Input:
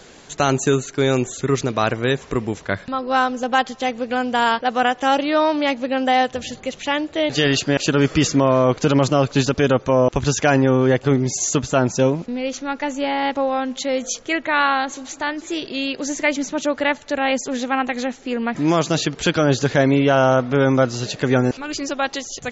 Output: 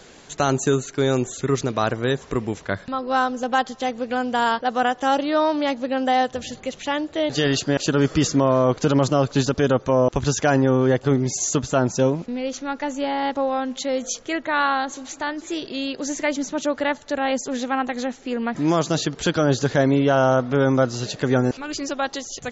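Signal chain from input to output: dynamic EQ 2400 Hz, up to -7 dB, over -38 dBFS, Q 2.3; gain -2 dB

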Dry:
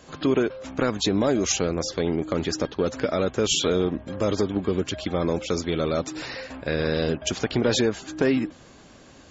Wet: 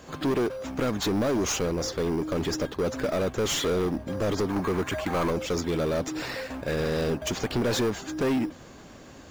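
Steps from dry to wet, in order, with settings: 4.48–5.31 graphic EQ 1000/2000/4000 Hz +10/+9/-11 dB; soft clip -24.5 dBFS, distortion -8 dB; in parallel at -8 dB: sample-rate reducer 5300 Hz, jitter 0%

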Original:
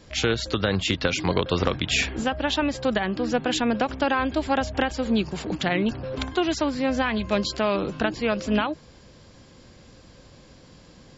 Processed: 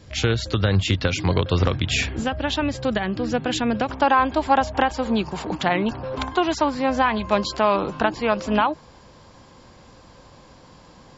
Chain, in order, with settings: bell 100 Hz +10.5 dB 0.92 oct, from 3.9 s 940 Hz

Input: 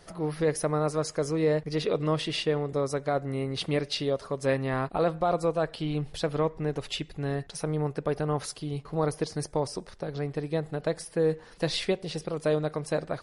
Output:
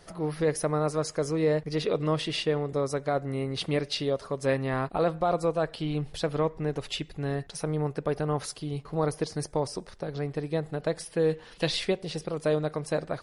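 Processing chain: 10.95–11.7 bell 3100 Hz +4.5 dB -> +11 dB 0.81 oct

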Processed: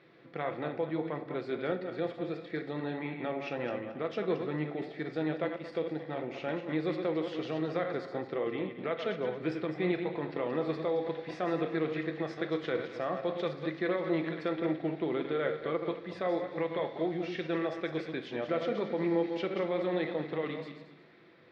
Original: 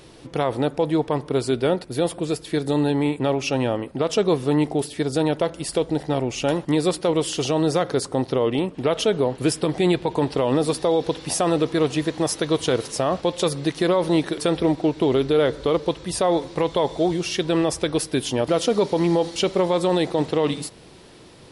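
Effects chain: regenerating reverse delay 0.112 s, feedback 47%, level -7 dB; speaker cabinet 240–3100 Hz, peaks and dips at 290 Hz -6 dB, 440 Hz -5 dB, 620 Hz -4 dB, 920 Hz -10 dB, 2000 Hz +5 dB, 2900 Hz -10 dB; reverb RT60 0.60 s, pre-delay 6 ms, DRR 8 dB; gain -8.5 dB

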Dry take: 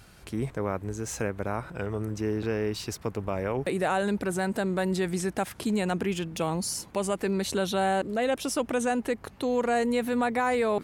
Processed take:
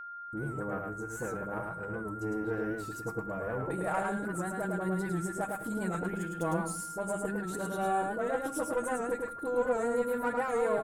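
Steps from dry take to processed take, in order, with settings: bin magnitudes rounded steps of 15 dB; notches 50/100/150/200/250/300/350 Hz; gate -41 dBFS, range -41 dB; band shelf 3600 Hz -13.5 dB; comb 6.3 ms, depth 49%; reverse; upward compressor, threshold -36 dBFS; reverse; dispersion highs, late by 43 ms, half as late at 830 Hz; added harmonics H 2 -12 dB, 7 -34 dB, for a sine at -14.5 dBFS; echo 0.107 s -3.5 dB; on a send at -14 dB: reverb RT60 0.55 s, pre-delay 29 ms; on the sum: whine 1400 Hz -34 dBFS; record warp 78 rpm, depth 100 cents; gain -6.5 dB

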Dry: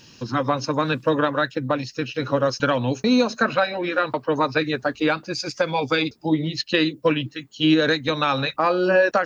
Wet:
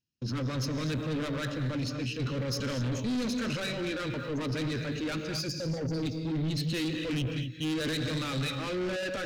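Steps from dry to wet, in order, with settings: spectral delete 5.49–6.03, 810–4500 Hz; in parallel at -6.5 dB: hard clip -25.5 dBFS, distortion -4 dB; on the sum: gate -32 dBFS, range -42 dB; transient shaper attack -6 dB, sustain +3 dB; low shelf 200 Hz +9 dB; reverse; upward compressor, threshold -31 dBFS; reverse; notch 710 Hz, Q 14; non-linear reverb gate 0.27 s rising, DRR 6.5 dB; soft clip -21.5 dBFS, distortion -8 dB; bell 860 Hz -11 dB 1.4 oct; gain -5 dB

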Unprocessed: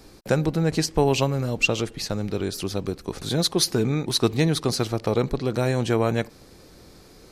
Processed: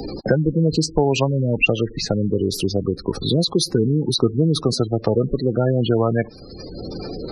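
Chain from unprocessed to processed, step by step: spectral gate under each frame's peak -15 dB strong; three-band squash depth 70%; gain +4.5 dB

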